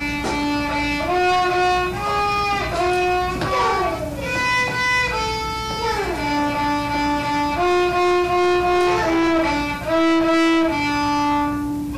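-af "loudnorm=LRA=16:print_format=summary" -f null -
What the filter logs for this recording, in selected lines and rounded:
Input Integrated:    -19.2 LUFS
Input True Peak:     -11.0 dBTP
Input LRA:             2.0 LU
Input Threshold:     -29.2 LUFS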